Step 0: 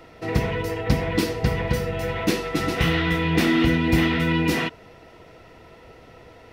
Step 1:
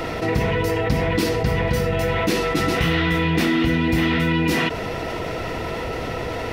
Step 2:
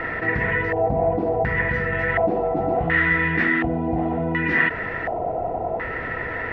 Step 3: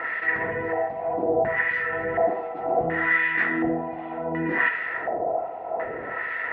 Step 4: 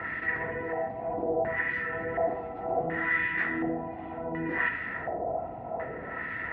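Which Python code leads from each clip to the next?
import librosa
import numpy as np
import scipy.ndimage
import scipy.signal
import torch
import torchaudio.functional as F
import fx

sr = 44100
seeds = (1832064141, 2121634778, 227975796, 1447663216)

y1 = fx.env_flatten(x, sr, amount_pct=70)
y1 = F.gain(torch.from_numpy(y1), -2.5).numpy()
y2 = fx.filter_lfo_lowpass(y1, sr, shape='square', hz=0.69, low_hz=730.0, high_hz=1800.0, q=7.3)
y2 = F.gain(torch.from_numpy(y2), -5.5).numpy()
y3 = fx.rev_freeverb(y2, sr, rt60_s=0.69, hf_ratio=0.55, predelay_ms=20, drr_db=8.5)
y3 = fx.filter_lfo_bandpass(y3, sr, shape='sine', hz=1.3, low_hz=440.0, high_hz=2400.0, q=0.88)
y4 = fx.dmg_noise_band(y3, sr, seeds[0], low_hz=50.0, high_hz=340.0, level_db=-41.0)
y4 = F.gain(torch.from_numpy(y4), -6.0).numpy()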